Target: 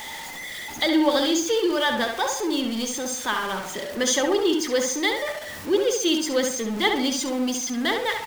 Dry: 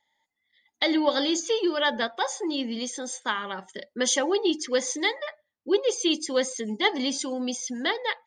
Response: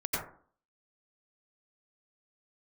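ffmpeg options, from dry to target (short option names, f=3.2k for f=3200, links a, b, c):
-filter_complex "[0:a]aeval=exprs='val(0)+0.5*0.0316*sgn(val(0))':c=same,asplit=2[a][b];[b]adelay=67,lowpass=f=3.5k:p=1,volume=-4.5dB,asplit=2[c][d];[d]adelay=67,lowpass=f=3.5k:p=1,volume=0.38,asplit=2[e][f];[f]adelay=67,lowpass=f=3.5k:p=1,volume=0.38,asplit=2[g][h];[h]adelay=67,lowpass=f=3.5k:p=1,volume=0.38,asplit=2[i][j];[j]adelay=67,lowpass=f=3.5k:p=1,volume=0.38[k];[c][e][g][i][k]amix=inputs=5:normalize=0[l];[a][l]amix=inputs=2:normalize=0"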